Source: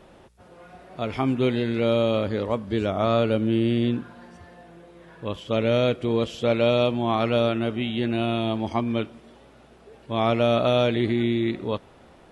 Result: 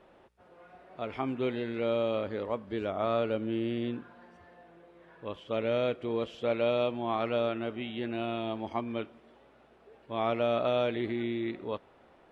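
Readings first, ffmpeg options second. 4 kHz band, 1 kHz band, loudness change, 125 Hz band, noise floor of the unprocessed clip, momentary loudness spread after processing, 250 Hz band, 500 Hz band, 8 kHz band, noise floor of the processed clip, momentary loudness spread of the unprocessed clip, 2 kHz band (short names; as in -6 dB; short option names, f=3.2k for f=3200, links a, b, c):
-10.5 dB, -6.5 dB, -8.5 dB, -14.0 dB, -52 dBFS, 11 LU, -10.0 dB, -7.0 dB, n/a, -60 dBFS, 11 LU, -8.0 dB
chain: -af "bass=f=250:g=-8,treble=f=4k:g=-12,volume=-6.5dB"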